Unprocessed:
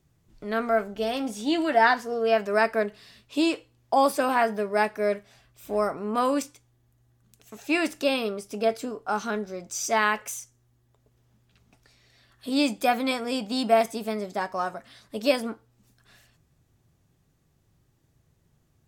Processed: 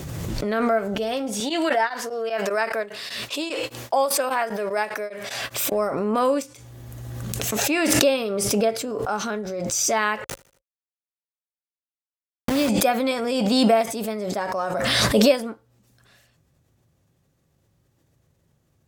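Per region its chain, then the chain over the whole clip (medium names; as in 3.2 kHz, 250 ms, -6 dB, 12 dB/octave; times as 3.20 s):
1.40–5.72 s: high-pass 630 Hz 6 dB/octave + tremolo of two beating tones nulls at 5 Hz
10.24–12.69 s: send-on-delta sampling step -24.5 dBFS + feedback delay 78 ms, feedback 46%, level -21 dB
whole clip: high-pass 48 Hz; peaking EQ 540 Hz +7 dB 0.23 oct; swell ahead of each attack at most 22 dB/s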